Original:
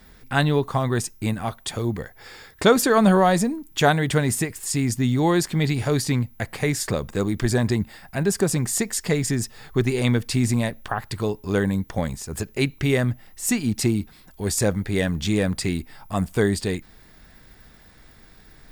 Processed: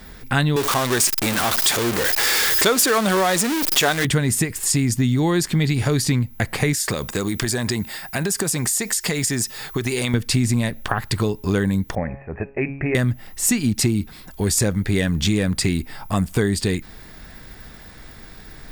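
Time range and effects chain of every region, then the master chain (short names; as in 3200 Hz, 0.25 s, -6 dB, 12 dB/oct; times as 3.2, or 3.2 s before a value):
0.56–4.05 zero-crossing step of -19 dBFS + tone controls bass -15 dB, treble +2 dB
6.73–10.14 tilt +2 dB/oct + compressor, threshold -26 dBFS
11.95–12.95 rippled Chebyshev low-pass 2600 Hz, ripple 9 dB + de-hum 137.8 Hz, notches 28
whole clip: dynamic EQ 700 Hz, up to -6 dB, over -35 dBFS, Q 0.89; compressor 3:1, threshold -26 dBFS; gain +9 dB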